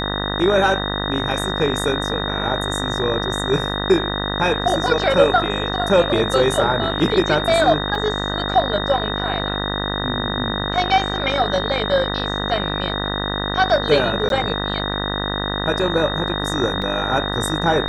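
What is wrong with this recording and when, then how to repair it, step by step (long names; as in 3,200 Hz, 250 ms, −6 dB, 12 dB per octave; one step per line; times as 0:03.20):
mains buzz 50 Hz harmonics 39 −25 dBFS
whistle 3,700 Hz −26 dBFS
0:07.95: drop-out 2.2 ms
0:14.29–0:14.30: drop-out 12 ms
0:16.82: drop-out 2.1 ms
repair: notch filter 3,700 Hz, Q 30
hum removal 50 Hz, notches 39
repair the gap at 0:07.95, 2.2 ms
repair the gap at 0:14.29, 12 ms
repair the gap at 0:16.82, 2.1 ms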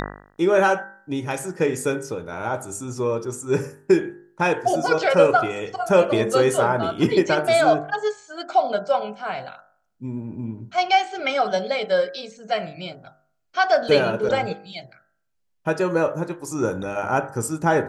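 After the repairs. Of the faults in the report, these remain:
none of them is left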